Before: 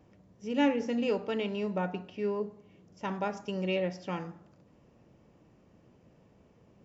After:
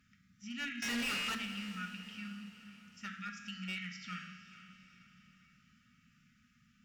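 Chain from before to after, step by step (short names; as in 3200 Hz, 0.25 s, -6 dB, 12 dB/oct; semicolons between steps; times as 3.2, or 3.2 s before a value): resonant low shelf 270 Hz -9.5 dB, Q 1.5; resonator 150 Hz, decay 1.3 s, mix 80%; in parallel at +0.5 dB: compressor 6:1, threshold -52 dBFS, peak gain reduction 16 dB; on the sum: brick-wall FIR band-stop 260–1200 Hz; 0.82–1.35 overdrive pedal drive 32 dB, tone 5800 Hz, clips at -37 dBFS; reverb RT60 0.80 s, pre-delay 5 ms, DRR 6 dB; one-sided clip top -42.5 dBFS; diffused feedback echo 0.457 s, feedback 50%, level -13.5 dB; gain +8 dB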